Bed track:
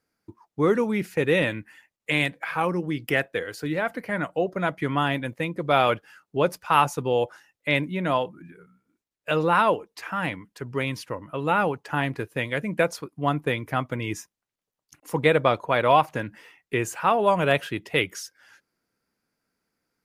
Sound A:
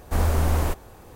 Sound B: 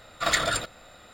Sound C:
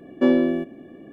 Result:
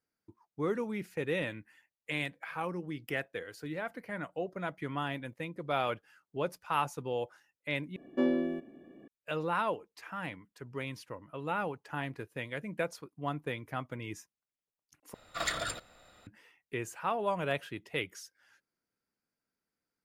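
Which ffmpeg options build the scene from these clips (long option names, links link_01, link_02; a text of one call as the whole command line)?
ffmpeg -i bed.wav -i cue0.wav -i cue1.wav -i cue2.wav -filter_complex "[0:a]volume=-11.5dB[link_01];[3:a]equalizer=frequency=62:width=1.3:gain=-8.5[link_02];[link_01]asplit=3[link_03][link_04][link_05];[link_03]atrim=end=7.964[link_06];[link_02]atrim=end=1.12,asetpts=PTS-STARTPTS,volume=-10.5dB[link_07];[link_04]atrim=start=9.076:end=15.144[link_08];[2:a]atrim=end=1.13,asetpts=PTS-STARTPTS,volume=-9.5dB[link_09];[link_05]atrim=start=16.266[link_10];[link_06][link_07]acrossfade=duration=0.004:curve1=hsin:curve2=hsin[link_11];[link_11][link_08]acrossfade=duration=0.004:curve1=hsin:curve2=hsin[link_12];[link_12][link_09]acrossfade=duration=0.004:curve1=hsin:curve2=hsin[link_13];[link_13][link_10]acrossfade=duration=0.004:curve1=hsin:curve2=hsin" out.wav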